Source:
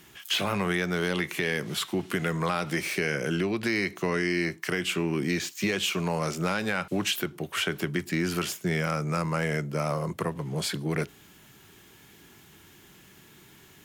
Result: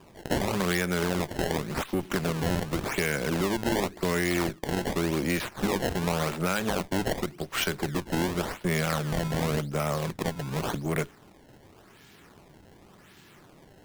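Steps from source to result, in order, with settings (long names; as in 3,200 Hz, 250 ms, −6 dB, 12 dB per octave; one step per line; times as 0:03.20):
harmonic generator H 6 −19 dB, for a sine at −15 dBFS
sample-and-hold swept by an LFO 21×, swing 160% 0.89 Hz
every ending faded ahead of time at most 390 dB per second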